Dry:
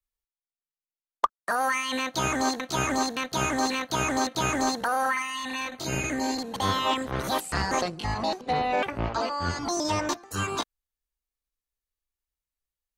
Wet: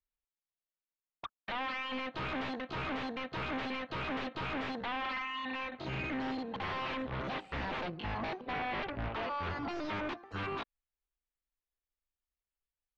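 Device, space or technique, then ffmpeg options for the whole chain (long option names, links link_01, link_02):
synthesiser wavefolder: -af "aeval=exprs='0.0473*(abs(mod(val(0)/0.0473+3,4)-2)-1)':channel_layout=same,lowpass=frequency=3200:width=0.5412,lowpass=frequency=3200:width=1.3066,volume=-4.5dB"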